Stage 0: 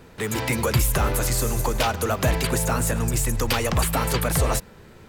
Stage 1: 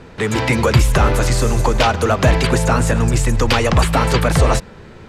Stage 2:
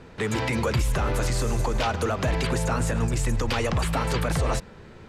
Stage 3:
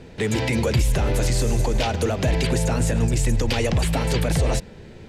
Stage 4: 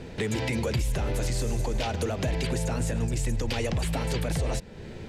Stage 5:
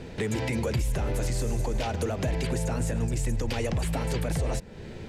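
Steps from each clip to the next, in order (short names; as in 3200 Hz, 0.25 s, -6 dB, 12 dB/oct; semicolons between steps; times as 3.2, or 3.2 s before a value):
air absorption 75 m; gain +8.5 dB
limiter -9 dBFS, peak gain reduction 7 dB; gain -7 dB
bell 1200 Hz -11.5 dB 0.79 oct; gain +4.5 dB
compressor 2:1, threshold -34 dBFS, peak gain reduction 10 dB; gain +2 dB
dynamic EQ 3700 Hz, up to -4 dB, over -48 dBFS, Q 0.99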